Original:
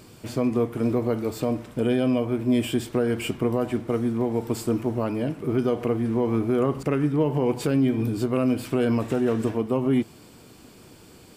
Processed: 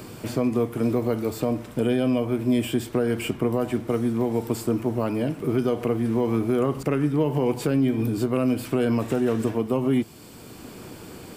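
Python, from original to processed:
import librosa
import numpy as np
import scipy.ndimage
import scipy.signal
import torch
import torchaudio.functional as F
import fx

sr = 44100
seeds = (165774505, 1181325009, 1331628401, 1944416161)

y = fx.high_shelf(x, sr, hz=11000.0, db=7.0)
y = fx.band_squash(y, sr, depth_pct=40)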